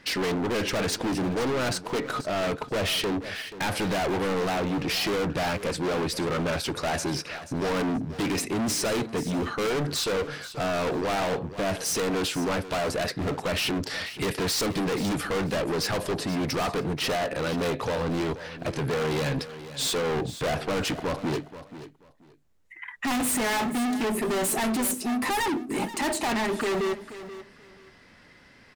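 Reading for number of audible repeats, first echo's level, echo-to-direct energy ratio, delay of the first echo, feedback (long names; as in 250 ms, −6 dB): 2, −14.0 dB, −14.0 dB, 482 ms, 20%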